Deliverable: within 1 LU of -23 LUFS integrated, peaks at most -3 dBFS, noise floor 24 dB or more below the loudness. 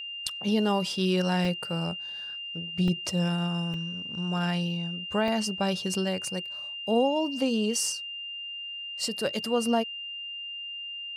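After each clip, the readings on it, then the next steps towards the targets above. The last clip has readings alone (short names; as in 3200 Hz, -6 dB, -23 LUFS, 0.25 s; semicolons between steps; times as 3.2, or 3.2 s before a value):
dropouts 4; longest dropout 1.9 ms; steady tone 2800 Hz; tone level -35 dBFS; loudness -29.0 LUFS; peak -14.0 dBFS; loudness target -23.0 LUFS
-> interpolate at 1.45/2.88/3.74/5.28, 1.9 ms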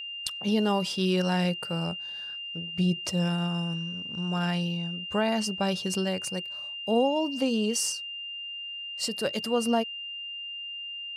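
dropouts 0; steady tone 2800 Hz; tone level -35 dBFS
-> notch 2800 Hz, Q 30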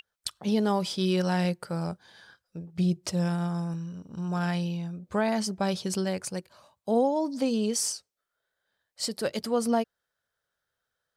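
steady tone none; loudness -29.0 LUFS; peak -14.5 dBFS; loudness target -23.0 LUFS
-> gain +6 dB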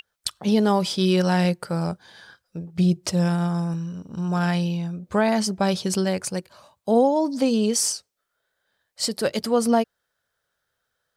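loudness -23.0 LUFS; peak -8.5 dBFS; noise floor -78 dBFS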